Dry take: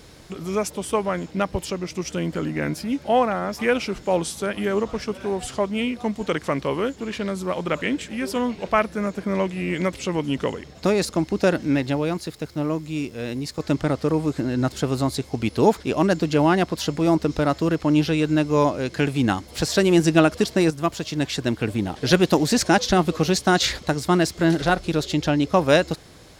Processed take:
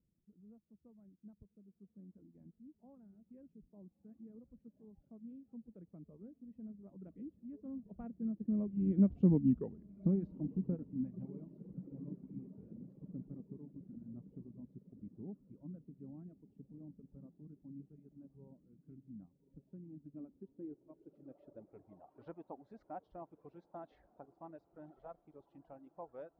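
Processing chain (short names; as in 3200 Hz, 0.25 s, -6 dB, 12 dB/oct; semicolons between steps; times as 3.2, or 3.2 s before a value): Doppler pass-by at 9.29, 29 m/s, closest 7.2 m; bell 120 Hz -6.5 dB 2.5 oct; diffused feedback echo 1.164 s, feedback 63%, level -13.5 dB; reverb removal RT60 2 s; low-pass sweep 200 Hz -> 800 Hz, 19.85–22.05; gain +2.5 dB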